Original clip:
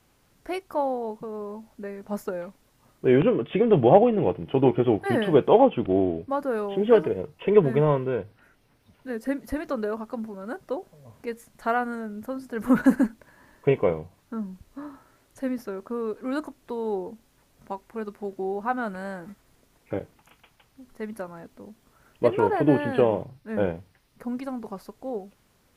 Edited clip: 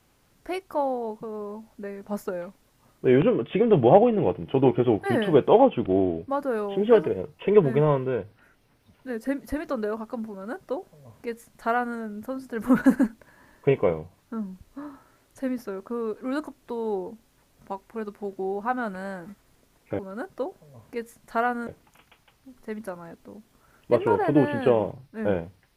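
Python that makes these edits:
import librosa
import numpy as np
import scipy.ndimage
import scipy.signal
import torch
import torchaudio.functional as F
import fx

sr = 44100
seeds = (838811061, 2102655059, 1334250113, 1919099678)

y = fx.edit(x, sr, fx.duplicate(start_s=10.3, length_s=1.68, to_s=19.99), tone=tone)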